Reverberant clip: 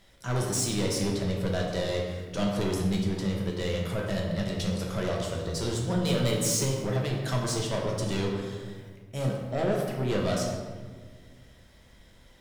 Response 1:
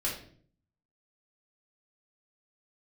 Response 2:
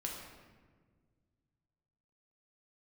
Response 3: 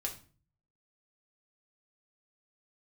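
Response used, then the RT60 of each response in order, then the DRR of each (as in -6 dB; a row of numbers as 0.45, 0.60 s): 2; 0.55, 1.6, 0.40 s; -6.0, -1.5, 0.0 dB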